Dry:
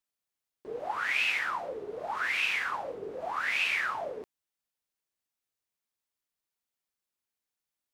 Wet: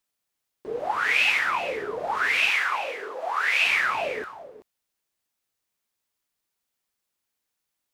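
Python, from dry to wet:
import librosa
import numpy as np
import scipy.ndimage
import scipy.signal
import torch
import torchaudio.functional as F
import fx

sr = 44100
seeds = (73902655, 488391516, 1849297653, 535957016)

y = fx.highpass(x, sr, hz=540.0, slope=12, at=(2.5, 3.63))
y = y + 10.0 ** (-13.5 / 20.0) * np.pad(y, (int(381 * sr / 1000.0), 0))[:len(y)]
y = y * librosa.db_to_amplitude(7.0)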